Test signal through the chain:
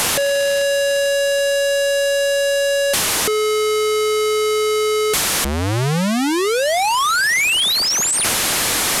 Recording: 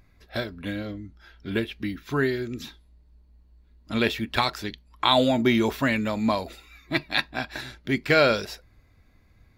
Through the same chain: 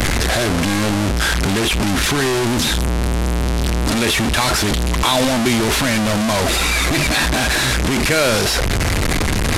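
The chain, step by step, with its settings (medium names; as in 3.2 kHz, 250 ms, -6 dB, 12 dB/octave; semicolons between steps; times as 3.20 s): one-bit delta coder 64 kbps, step -14.5 dBFS; transient shaper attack -1 dB, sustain +11 dB; three bands compressed up and down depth 40%; trim +3 dB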